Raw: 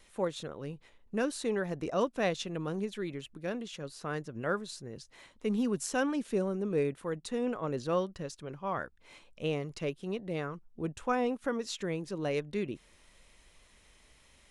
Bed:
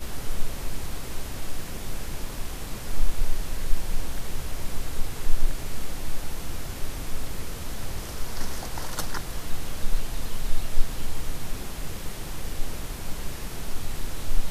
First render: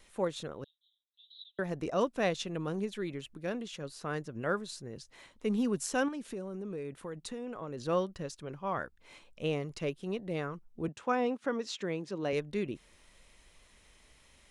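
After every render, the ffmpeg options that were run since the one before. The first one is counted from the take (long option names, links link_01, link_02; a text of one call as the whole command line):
ffmpeg -i in.wav -filter_complex "[0:a]asettb=1/sr,asplit=3[link_01][link_02][link_03];[link_01]atrim=end=0.644[link_04];[link_02]atrim=start=0.64:end=1.59,asetpts=PTS-STARTPTS,afade=type=in:duration=0.004:curve=qsin,afade=type=out:start_time=0.946:duration=0.004:curve=qsin,asuperpass=centerf=3600:order=8:qfactor=5[link_05];[link_03]atrim=start=1.586[link_06];[link_04][link_05]acrossfade=duration=0.004:curve1=hsin:curve2=qsin[link_07];[link_07][link_06]acrossfade=duration=0.004:curve1=qsin:curve2=hsin,asettb=1/sr,asplit=3[link_08][link_09][link_10];[link_08]atrim=end=6.084[link_11];[link_09]atrim=start=6.08:end=7.87,asetpts=PTS-STARTPTS,afade=type=in:duration=0.004:curve=qsin,afade=type=out:start_time=1.786:duration=0.004:curve=qsin,acompressor=threshold=-36dB:ratio=6:attack=3.2:release=140:knee=1:detection=peak[link_12];[link_10]atrim=start=7.866[link_13];[link_11][link_12]acrossfade=duration=0.004:curve1=hsin:curve2=qsin[link_14];[link_14][link_13]acrossfade=duration=0.004:curve1=qsin:curve2=hsin,asettb=1/sr,asplit=3[link_15][link_16][link_17];[link_15]atrim=end=10.884[link_18];[link_16]atrim=start=10.88:end=12.33,asetpts=PTS-STARTPTS,afade=type=in:duration=0.004:curve=qsin,afade=type=out:start_time=1.446:duration=0.004:curve=qsin,highpass=160,lowpass=6600[link_19];[link_17]atrim=start=12.326[link_20];[link_18][link_19]acrossfade=duration=0.004:curve1=hsin:curve2=qsin[link_21];[link_21][link_20]acrossfade=duration=0.004:curve1=qsin:curve2=hsin" out.wav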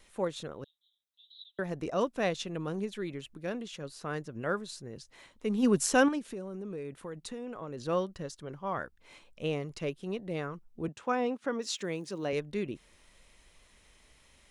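ffmpeg -i in.wav -filter_complex "[0:a]asplit=3[link_01][link_02][link_03];[link_01]afade=type=out:start_time=5.62:duration=0.02[link_04];[link_02]acontrast=74,afade=type=in:start_time=5.62:duration=0.02,afade=type=out:start_time=6.18:duration=0.02[link_05];[link_03]afade=type=in:start_time=6.18:duration=0.02[link_06];[link_04][link_05][link_06]amix=inputs=3:normalize=0,asettb=1/sr,asplit=3[link_07][link_08][link_09];[link_07]atrim=end=8.224[link_10];[link_08]atrim=start=8.22:end=8.74,asetpts=PTS-STARTPTS,afade=type=in:duration=0.004:curve=qsin,afade=type=out:start_time=0.516:duration=0.004:curve=qsin,bandreject=frequency=2500:width=6.9[link_11];[link_09]atrim=start=8.736[link_12];[link_10][link_11]acrossfade=duration=0.004:curve1=hsin:curve2=qsin[link_13];[link_13][link_12]acrossfade=duration=0.004:curve1=qsin:curve2=hsin,asettb=1/sr,asplit=3[link_14][link_15][link_16];[link_14]atrim=end=11.624[link_17];[link_15]atrim=start=11.62:end=12.25,asetpts=PTS-STARTPTS,afade=type=in:duration=0.004:curve=qsin,afade=type=out:start_time=0.626:duration=0.004:curve=qsin,aemphasis=mode=production:type=50fm[link_18];[link_16]atrim=start=12.246[link_19];[link_17][link_18]acrossfade=duration=0.004:curve1=hsin:curve2=qsin[link_20];[link_20][link_19]acrossfade=duration=0.004:curve1=qsin:curve2=hsin" out.wav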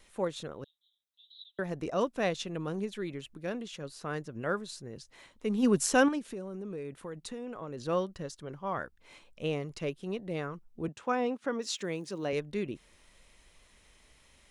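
ffmpeg -i in.wav -af anull out.wav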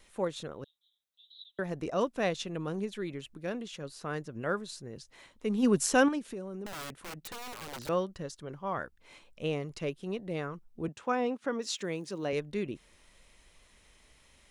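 ffmpeg -i in.wav -filter_complex "[0:a]asettb=1/sr,asplit=3[link_01][link_02][link_03];[link_01]atrim=end=6.664[link_04];[link_02]atrim=start=6.66:end=7.89,asetpts=PTS-STARTPTS,afade=type=in:duration=0.004:curve=qsin,afade=type=out:start_time=1.226:duration=0.004:curve=qsin,aeval=exprs='(mod(66.8*val(0)+1,2)-1)/66.8':channel_layout=same[link_05];[link_03]atrim=start=7.886[link_06];[link_04][link_05]acrossfade=duration=0.004:curve1=hsin:curve2=qsin[link_07];[link_07][link_06]acrossfade=duration=0.004:curve1=qsin:curve2=hsin" out.wav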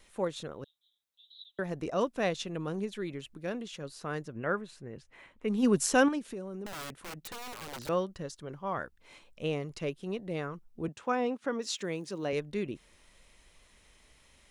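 ffmpeg -i in.wav -filter_complex "[0:a]asettb=1/sr,asplit=3[link_01][link_02][link_03];[link_01]atrim=end=4.324[link_04];[link_02]atrim=start=4.32:end=5.48,asetpts=PTS-STARTPTS,afade=type=in:duration=0.004:curve=qsin,afade=type=out:start_time=1.156:duration=0.004:curve=qsin,highshelf=frequency=3300:width_type=q:width=1.5:gain=-9.5[link_05];[link_03]atrim=start=5.476[link_06];[link_04][link_05]acrossfade=duration=0.004:curve1=hsin:curve2=qsin[link_07];[link_07][link_06]acrossfade=duration=0.004:curve1=qsin:curve2=hsin" out.wav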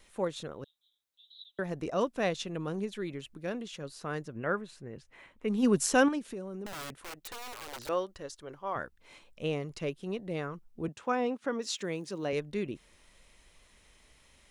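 ffmpeg -i in.wav -filter_complex "[0:a]asettb=1/sr,asplit=3[link_01][link_02][link_03];[link_01]atrim=end=6.974[link_04];[link_02]atrim=start=6.97:end=8.76,asetpts=PTS-STARTPTS,afade=type=in:duration=0.004:curve=qsin,afade=type=out:start_time=1.786:duration=0.004:curve=qsin,equalizer=frequency=170:width=1.5:gain=-13[link_05];[link_03]atrim=start=8.756[link_06];[link_04][link_05]acrossfade=duration=0.004:curve1=hsin:curve2=qsin[link_07];[link_07][link_06]acrossfade=duration=0.004:curve1=qsin:curve2=hsin" out.wav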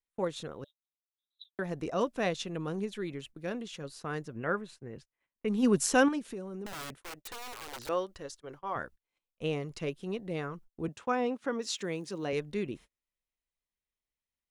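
ffmpeg -i in.wav -af "agate=range=-35dB:threshold=-49dB:ratio=16:detection=peak,bandreject=frequency=590:width=17" out.wav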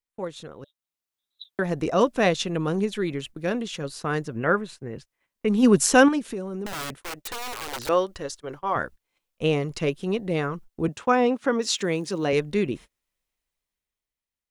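ffmpeg -i in.wav -af "dynaudnorm=framelen=170:gausssize=13:maxgain=10dB" out.wav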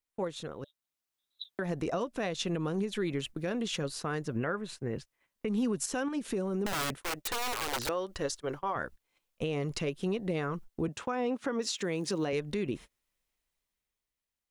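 ffmpeg -i in.wav -af "acompressor=threshold=-24dB:ratio=6,alimiter=limit=-23dB:level=0:latency=1:release=206" out.wav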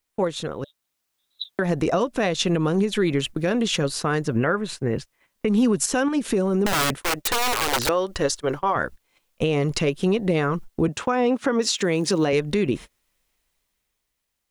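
ffmpeg -i in.wav -af "volume=11dB" out.wav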